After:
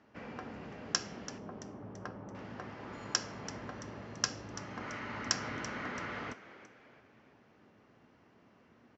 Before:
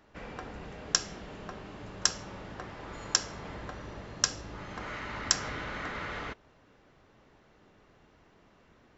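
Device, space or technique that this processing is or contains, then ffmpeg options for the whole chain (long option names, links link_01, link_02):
car door speaker: -filter_complex "[0:a]asettb=1/sr,asplit=3[link_01][link_02][link_03];[link_01]atrim=end=1.384[link_04];[link_02]atrim=start=1.38:end=2.35,asetpts=PTS-STARTPTS,afade=type=in:duration=0.004:curve=qsin,afade=type=out:start_time=0.966:duration=0.004:curve=qsin,lowpass=1000[link_05];[link_03]atrim=start=2.346[link_06];[link_04][link_05]acrossfade=duration=0.004:curve1=hsin:curve2=qsin[link_07];[link_07][link_06]acrossfade=duration=0.004:curve1=qsin:curve2=hsin,lowpass=7000,highpass=100,equalizer=frequency=110:width_type=q:width=4:gain=4,equalizer=frequency=240:width_type=q:width=4:gain=7,equalizer=frequency=3700:width_type=q:width=4:gain=-6,lowpass=frequency=6800:width=0.5412,lowpass=frequency=6800:width=1.3066,asplit=5[link_08][link_09][link_10][link_11][link_12];[link_09]adelay=335,afreqshift=92,volume=-15dB[link_13];[link_10]adelay=670,afreqshift=184,volume=-22.1dB[link_14];[link_11]adelay=1005,afreqshift=276,volume=-29.3dB[link_15];[link_12]adelay=1340,afreqshift=368,volume=-36.4dB[link_16];[link_08][link_13][link_14][link_15][link_16]amix=inputs=5:normalize=0,volume=-3dB"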